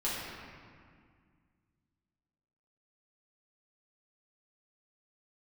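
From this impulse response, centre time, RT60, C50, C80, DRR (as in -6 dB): 128 ms, 2.0 s, -2.0 dB, 0.0 dB, -9.5 dB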